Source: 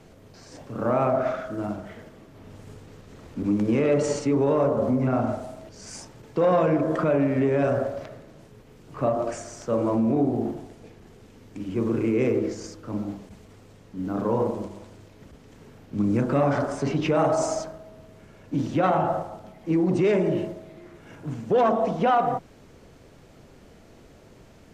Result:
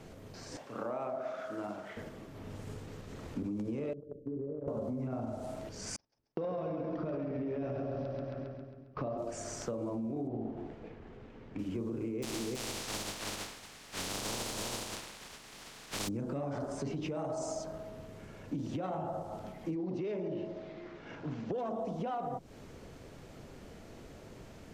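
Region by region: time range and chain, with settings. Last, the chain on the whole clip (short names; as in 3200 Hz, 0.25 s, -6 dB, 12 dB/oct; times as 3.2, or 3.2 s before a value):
0.57–1.97 HPF 770 Hz 6 dB/oct + high shelf 6700 Hz -6.5 dB
3.93–4.68 steep low-pass 510 Hz 48 dB/oct + gate -24 dBFS, range -17 dB + compressor 4:1, threshold -35 dBFS
5.96–9.18 steep low-pass 5700 Hz 72 dB/oct + gate -40 dBFS, range -42 dB + split-band echo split 330 Hz, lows 0.198 s, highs 0.135 s, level -3 dB
10.27–11.59 LPF 2500 Hz + notches 50/100/150/200/250/300/350/400/450 Hz
12.22–16.07 spectral contrast lowered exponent 0.12 + air absorption 57 m + echo 0.326 s -4 dB
19.75–21.52 LPF 5300 Hz 24 dB/oct + bell 64 Hz -9 dB 2.5 oct
whole clip: dynamic EQ 1700 Hz, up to -8 dB, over -41 dBFS, Q 0.74; limiter -19 dBFS; compressor 5:1, threshold -35 dBFS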